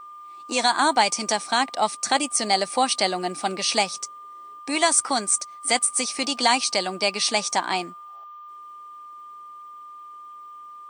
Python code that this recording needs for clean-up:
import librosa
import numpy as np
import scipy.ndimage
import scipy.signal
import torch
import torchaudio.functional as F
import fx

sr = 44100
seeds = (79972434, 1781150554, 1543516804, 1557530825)

y = fx.notch(x, sr, hz=1200.0, q=30.0)